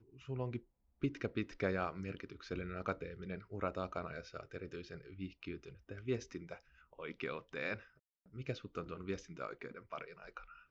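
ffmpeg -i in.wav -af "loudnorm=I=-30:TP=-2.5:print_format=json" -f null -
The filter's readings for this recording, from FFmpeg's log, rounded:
"input_i" : "-44.0",
"input_tp" : "-22.4",
"input_lra" : "6.4",
"input_thresh" : "-54.4",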